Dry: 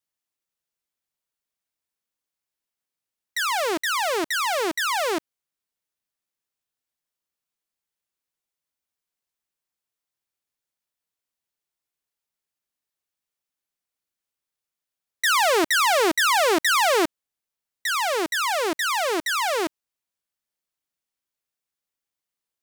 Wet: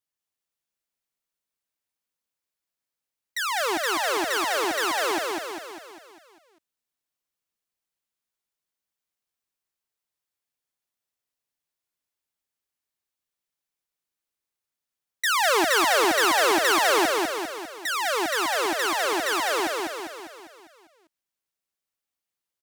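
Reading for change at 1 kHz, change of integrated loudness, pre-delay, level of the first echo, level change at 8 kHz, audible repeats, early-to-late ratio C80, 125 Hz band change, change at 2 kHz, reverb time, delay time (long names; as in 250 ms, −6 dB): −0.5 dB, −1.0 dB, no reverb audible, −3.0 dB, −0.5 dB, 6, no reverb audible, can't be measured, −0.5 dB, no reverb audible, 200 ms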